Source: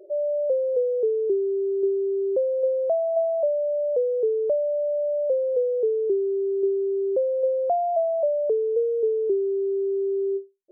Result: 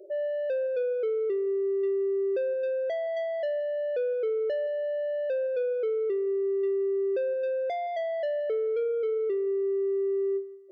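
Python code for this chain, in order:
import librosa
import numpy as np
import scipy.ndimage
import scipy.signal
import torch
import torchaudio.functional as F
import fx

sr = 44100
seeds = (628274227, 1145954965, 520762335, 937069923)

p1 = 10.0 ** (-25.0 / 20.0) * np.tanh(x / 10.0 ** (-25.0 / 20.0))
p2 = fx.fixed_phaser(p1, sr, hz=450.0, stages=4)
y = p2 + fx.echo_feedback(p2, sr, ms=171, feedback_pct=37, wet_db=-19.5, dry=0)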